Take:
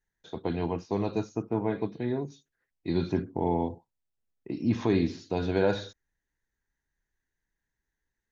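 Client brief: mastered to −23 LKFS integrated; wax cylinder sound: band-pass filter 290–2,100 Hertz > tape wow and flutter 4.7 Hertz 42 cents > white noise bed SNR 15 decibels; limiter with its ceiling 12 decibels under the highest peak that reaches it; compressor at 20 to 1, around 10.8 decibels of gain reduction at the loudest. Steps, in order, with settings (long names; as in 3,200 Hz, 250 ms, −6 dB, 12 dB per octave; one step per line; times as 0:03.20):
downward compressor 20 to 1, threshold −30 dBFS
brickwall limiter −31 dBFS
band-pass filter 290–2,100 Hz
tape wow and flutter 4.7 Hz 42 cents
white noise bed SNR 15 dB
level +22.5 dB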